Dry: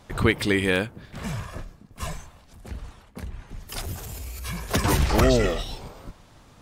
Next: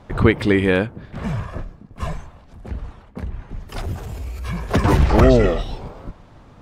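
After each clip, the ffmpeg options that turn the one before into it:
-af "lowpass=f=1300:p=1,volume=2.24"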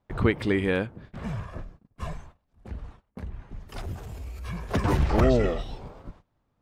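-af "agate=range=0.1:threshold=0.0126:ratio=16:detection=peak,volume=0.398"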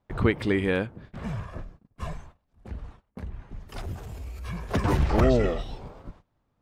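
-af anull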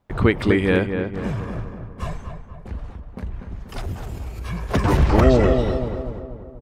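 -filter_complex "[0:a]asplit=2[s0][s1];[s1]adelay=242,lowpass=f=1800:p=1,volume=0.501,asplit=2[s2][s3];[s3]adelay=242,lowpass=f=1800:p=1,volume=0.54,asplit=2[s4][s5];[s5]adelay=242,lowpass=f=1800:p=1,volume=0.54,asplit=2[s6][s7];[s7]adelay=242,lowpass=f=1800:p=1,volume=0.54,asplit=2[s8][s9];[s9]adelay=242,lowpass=f=1800:p=1,volume=0.54,asplit=2[s10][s11];[s11]adelay=242,lowpass=f=1800:p=1,volume=0.54,asplit=2[s12][s13];[s13]adelay=242,lowpass=f=1800:p=1,volume=0.54[s14];[s0][s2][s4][s6][s8][s10][s12][s14]amix=inputs=8:normalize=0,volume=1.88"

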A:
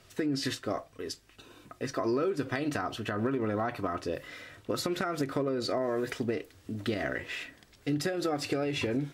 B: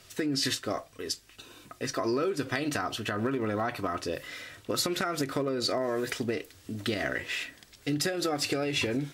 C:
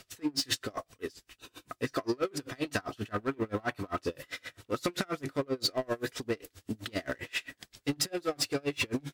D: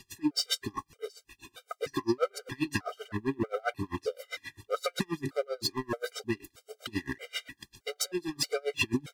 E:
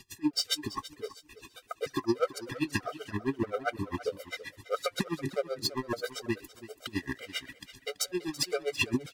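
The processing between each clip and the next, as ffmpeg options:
-af "highshelf=f=2300:g=8.5"
-filter_complex "[0:a]asplit=2[s0][s1];[s1]aeval=exprs='0.0282*(abs(mod(val(0)/0.0282+3,4)-2)-1)':c=same,volume=0.447[s2];[s0][s2]amix=inputs=2:normalize=0,aeval=exprs='val(0)*pow(10,-32*(0.5-0.5*cos(2*PI*7.6*n/s))/20)':c=same,volume=1.26"
-af "afftfilt=real='re*gt(sin(2*PI*1.6*pts/sr)*(1-2*mod(floor(b*sr/1024/400),2)),0)':imag='im*gt(sin(2*PI*1.6*pts/sr)*(1-2*mod(floor(b*sr/1024/400),2)),0)':win_size=1024:overlap=0.75,volume=1.5"
-af "aecho=1:1:332|664|996:0.158|0.0444|0.0124"

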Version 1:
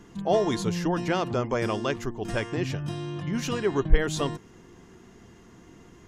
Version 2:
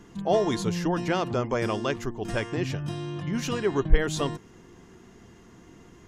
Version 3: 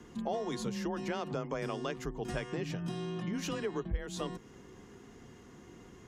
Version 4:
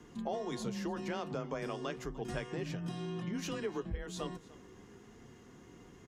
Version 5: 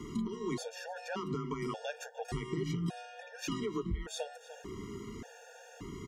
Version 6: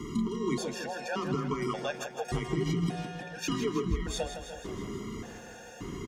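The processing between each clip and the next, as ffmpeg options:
-af anull
-af "acompressor=threshold=0.0282:ratio=4,afreqshift=25,volume=0.75"
-af "flanger=delay=6.6:depth=4.9:regen=-70:speed=0.34:shape=triangular,aecho=1:1:298:0.0944,volume=1.26"
-af "acompressor=threshold=0.00501:ratio=3,afftfilt=real='re*gt(sin(2*PI*0.86*pts/sr)*(1-2*mod(floor(b*sr/1024/470),2)),0)':imag='im*gt(sin(2*PI*0.86*pts/sr)*(1-2*mod(floor(b*sr/1024/470),2)),0)':win_size=1024:overlap=0.75,volume=4.22"
-af "aecho=1:1:161|322|483|644|805|966|1127:0.355|0.206|0.119|0.0692|0.0402|0.0233|0.0135,volume=1.78"

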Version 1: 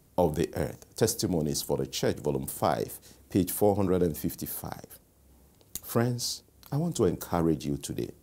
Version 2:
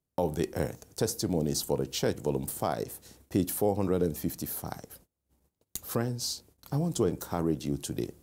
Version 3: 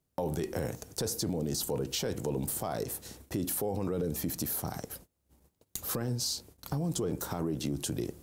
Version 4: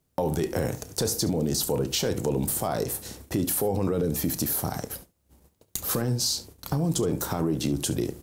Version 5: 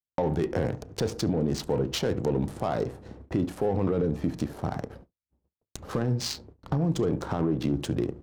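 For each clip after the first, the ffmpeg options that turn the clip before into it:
-af "alimiter=limit=0.168:level=0:latency=1:release=382,agate=range=0.0562:threshold=0.00178:ratio=16:detection=peak"
-af "alimiter=level_in=1.33:limit=0.0631:level=0:latency=1:release=13,volume=0.75,acompressor=threshold=0.0141:ratio=2,volume=2"
-af "aecho=1:1:31|70:0.168|0.133,volume=2.11"
-af "adynamicsmooth=sensitivity=3:basefreq=1100,agate=range=0.0224:threshold=0.00501:ratio=3:detection=peak"

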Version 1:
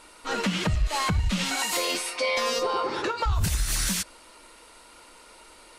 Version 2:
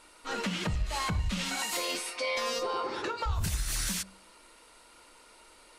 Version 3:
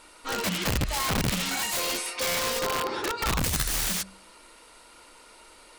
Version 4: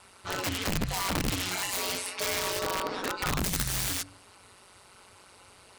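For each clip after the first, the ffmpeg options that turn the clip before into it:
-af "bandreject=f=47.97:t=h:w=4,bandreject=f=95.94:t=h:w=4,bandreject=f=143.91:t=h:w=4,bandreject=f=191.88:t=h:w=4,bandreject=f=239.85:t=h:w=4,bandreject=f=287.82:t=h:w=4,bandreject=f=335.79:t=h:w=4,bandreject=f=383.76:t=h:w=4,bandreject=f=431.73:t=h:w=4,bandreject=f=479.7:t=h:w=4,bandreject=f=527.67:t=h:w=4,bandreject=f=575.64:t=h:w=4,bandreject=f=623.61:t=h:w=4,bandreject=f=671.58:t=h:w=4,bandreject=f=719.55:t=h:w=4,bandreject=f=767.52:t=h:w=4,bandreject=f=815.49:t=h:w=4,bandreject=f=863.46:t=h:w=4,bandreject=f=911.43:t=h:w=4,bandreject=f=959.4:t=h:w=4,bandreject=f=1007.37:t=h:w=4,bandreject=f=1055.34:t=h:w=4,bandreject=f=1103.31:t=h:w=4,volume=0.531"
-af "aeval=exprs='(mod(18.8*val(0)+1,2)-1)/18.8':c=same,volume=1.68"
-af "aeval=exprs='val(0)*sin(2*PI*93*n/s)':c=same"

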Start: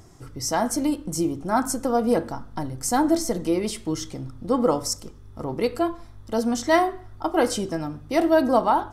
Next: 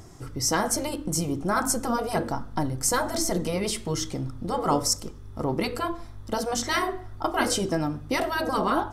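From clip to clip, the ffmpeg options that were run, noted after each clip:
-af "afftfilt=real='re*lt(hypot(re,im),0.501)':imag='im*lt(hypot(re,im),0.501)':win_size=1024:overlap=0.75,volume=1.41"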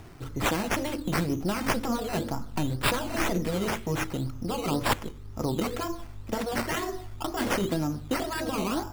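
-filter_complex "[0:a]acrossover=split=380|3000[s0][s1][s2];[s1]acompressor=threshold=0.0251:ratio=6[s3];[s0][s3][s2]amix=inputs=3:normalize=0,acrusher=samples=10:mix=1:aa=0.000001:lfo=1:lforange=6:lforate=2"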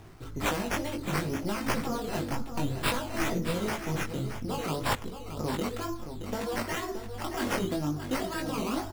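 -filter_complex "[0:a]flanger=delay=18:depth=3.3:speed=0.59,asplit=2[s0][s1];[s1]aecho=0:1:623:0.335[s2];[s0][s2]amix=inputs=2:normalize=0"

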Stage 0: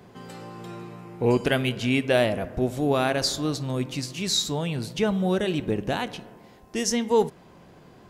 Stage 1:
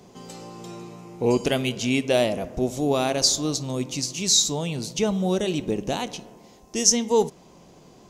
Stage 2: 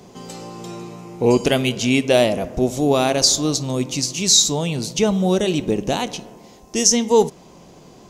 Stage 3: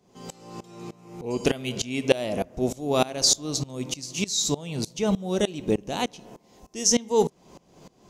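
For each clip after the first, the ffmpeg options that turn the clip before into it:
-af "equalizer=f=100:t=o:w=0.67:g=-7,equalizer=f=1600:t=o:w=0.67:g=-9,equalizer=f=6300:t=o:w=0.67:g=11,volume=1.12"
-af "alimiter=level_in=2.11:limit=0.891:release=50:level=0:latency=1,volume=0.891"
-af "aeval=exprs='val(0)*pow(10,-22*if(lt(mod(-3.3*n/s,1),2*abs(-3.3)/1000),1-mod(-3.3*n/s,1)/(2*abs(-3.3)/1000),(mod(-3.3*n/s,1)-2*abs(-3.3)/1000)/(1-2*abs(-3.3)/1000))/20)':c=same"

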